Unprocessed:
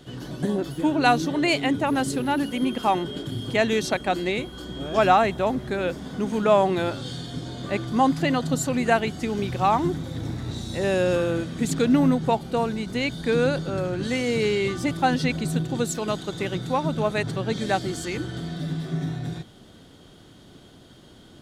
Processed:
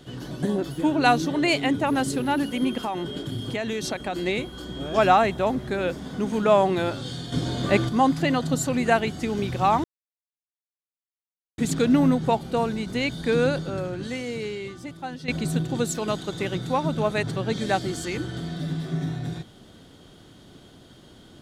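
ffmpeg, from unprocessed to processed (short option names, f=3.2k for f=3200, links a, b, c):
-filter_complex "[0:a]asettb=1/sr,asplit=3[a][b][c];[a]atrim=end=2.814[d];[b]atrim=start=2.81:end=4.22,asetpts=PTS-STARTPTS,afade=t=in:d=0.004:c=qsin,afade=t=out:st=1.406:d=0.004:c=qsin,acompressor=threshold=-24dB:ratio=6:attack=3.2:release=140:knee=1:detection=peak[e];[c]atrim=start=4.216[f];[d][e]acrossfade=d=0.004:c1=hsin:c2=qsin[g];[g][f]acrossfade=d=0.004:c1=qsin:c2=hsin,asettb=1/sr,asplit=3[h][i][j];[h]atrim=end=7.324[k];[i]atrim=start=7.32:end=7.89,asetpts=PTS-STARTPTS,afade=t=in:d=0.004:c=qsin,afade=t=out:st=0.566:d=0.004:c=qsin,acontrast=74[l];[j]atrim=start=7.886[m];[k][l]acrossfade=d=0.004:c1=hsin:c2=qsin[n];[n][m]acrossfade=d=0.004:c1=qsin:c2=hsin,asplit=4[o][p][q][r];[o]atrim=end=9.84,asetpts=PTS-STARTPTS,afade=t=out:st=9.836:d=0.004:c=hsin[s];[p]atrim=start=9.84:end=11.58,asetpts=PTS-STARTPTS,volume=0[t];[q]atrim=start=11.58:end=15.28,asetpts=PTS-STARTPTS,afade=t=in:d=0.004:c=hsin,afade=t=out:st=1.88:d=1.82:c=qua:silence=0.211349[u];[r]atrim=start=15.28,asetpts=PTS-STARTPTS,afade=t=in:d=0.004:c=hsin:silence=0.211349[v];[s][t][u][v]concat=n=4:v=0:a=1"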